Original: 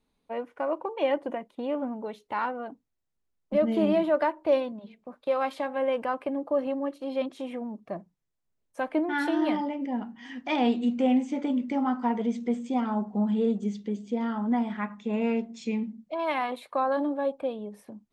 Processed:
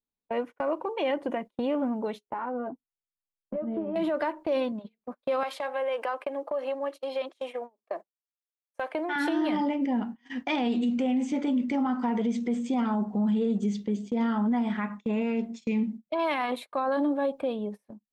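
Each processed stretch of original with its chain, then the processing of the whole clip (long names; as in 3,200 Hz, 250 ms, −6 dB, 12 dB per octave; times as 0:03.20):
0:02.26–0:03.96: low-pass filter 1,100 Hz + downward compressor, threshold −34 dBFS + double-tracking delay 12 ms −7.5 dB
0:05.43–0:09.16: high-pass filter 420 Hz 24 dB per octave + downward compressor 5 to 1, threshold −29 dBFS
whole clip: noise gate −41 dBFS, range −27 dB; dynamic equaliser 710 Hz, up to −3 dB, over −37 dBFS, Q 0.76; brickwall limiter −25.5 dBFS; level +5.5 dB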